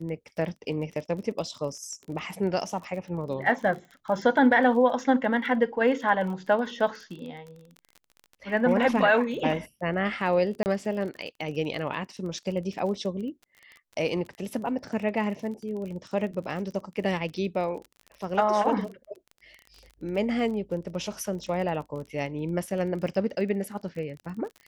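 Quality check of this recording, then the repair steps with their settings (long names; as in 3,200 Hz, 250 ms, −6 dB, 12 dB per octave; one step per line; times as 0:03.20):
surface crackle 30 per second −36 dBFS
0:10.63–0:10.66: drop-out 29 ms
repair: click removal
repair the gap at 0:10.63, 29 ms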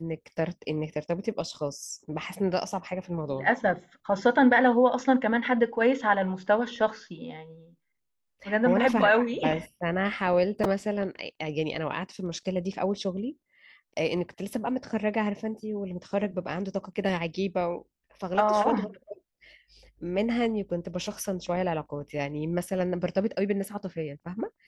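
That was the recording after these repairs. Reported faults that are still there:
none of them is left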